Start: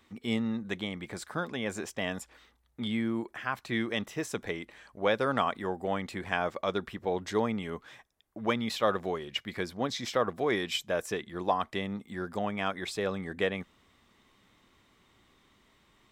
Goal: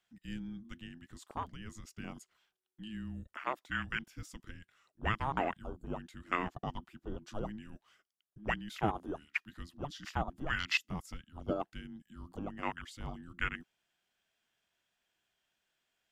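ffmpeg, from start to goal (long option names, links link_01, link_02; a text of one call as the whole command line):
ffmpeg -i in.wav -filter_complex "[0:a]asettb=1/sr,asplit=3[link_01][link_02][link_03];[link_01]atrim=end=8.804[link_04];[link_02]atrim=start=8.8:end=9.31,asetpts=PTS-STARTPTS,afade=type=in:duration=0.004:curve=qsin,afade=type=out:start_time=0.506:duration=0.004:curve=qsin,equalizer=frequency=400:width_type=o:width=0.33:gain=-12,equalizer=frequency=800:width_type=o:width=0.33:gain=11,equalizer=frequency=10000:width_type=o:width=0.33:gain=7[link_05];[link_03]atrim=start=9.306[link_06];[link_04][link_05]acrossfade=duration=0.004:curve1=hsin:curve2=qsin[link_07];[link_07][link_06]acrossfade=duration=0.004:curve1=qsin:curve2=hsin,afwtdn=0.02,tiltshelf=frequency=1200:gain=-9,afreqshift=-430,volume=-3.5dB" out.wav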